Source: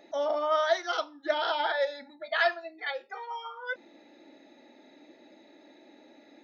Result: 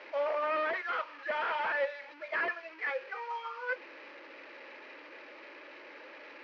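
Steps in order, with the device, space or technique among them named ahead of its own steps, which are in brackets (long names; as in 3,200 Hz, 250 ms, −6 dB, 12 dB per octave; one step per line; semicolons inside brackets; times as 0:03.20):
0:00.81–0:02.12: high-pass filter 550 Hz 12 dB per octave
digital answering machine (band-pass filter 340–3,300 Hz; linear delta modulator 32 kbit/s, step −43 dBFS; loudspeaker in its box 450–4,000 Hz, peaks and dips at 500 Hz +6 dB, 710 Hz −10 dB, 1,100 Hz +3 dB, 1,700 Hz +4 dB, 2,400 Hz +7 dB, 3,600 Hz −9 dB)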